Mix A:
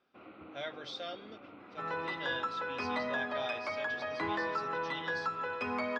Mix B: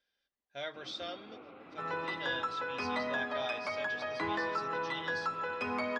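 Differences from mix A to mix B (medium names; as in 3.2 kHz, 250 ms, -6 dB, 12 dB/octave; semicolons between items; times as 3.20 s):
first sound: entry +0.60 s; master: add treble shelf 9.3 kHz +11.5 dB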